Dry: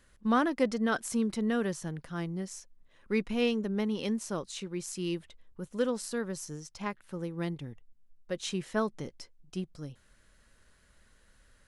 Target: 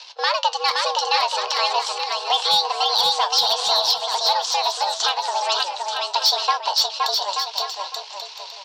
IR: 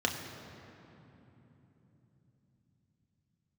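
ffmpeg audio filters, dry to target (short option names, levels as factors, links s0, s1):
-af "aeval=exprs='if(lt(val(0),0),0.447*val(0),val(0))':c=same,equalizer=f=650:t=o:w=0.95:g=14,bandreject=f=720:w=12,acompressor=threshold=0.00891:ratio=2.5,aexciter=amount=13.6:drive=5.2:freq=2300,highpass=f=280:t=q:w=0.5412,highpass=f=280:t=q:w=1.307,lowpass=f=3400:t=q:w=0.5176,lowpass=f=3400:t=q:w=0.7071,lowpass=f=3400:t=q:w=1.932,afreqshift=140,volume=17.8,asoftclip=hard,volume=0.0562,flanger=delay=8.3:depth=8:regen=73:speed=0.46:shape=triangular,aecho=1:1:700|1190|1533|1773|1941:0.631|0.398|0.251|0.158|0.1,asetrate=59535,aresample=44100,alimiter=level_in=29.9:limit=0.891:release=50:level=0:latency=1,volume=0.422"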